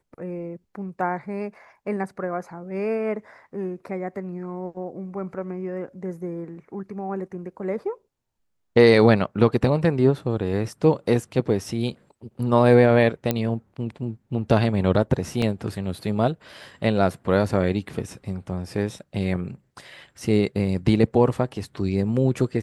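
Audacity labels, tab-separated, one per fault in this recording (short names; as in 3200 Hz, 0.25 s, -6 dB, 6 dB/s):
13.310000	13.310000	pop -8 dBFS
15.420000	15.420000	gap 3.2 ms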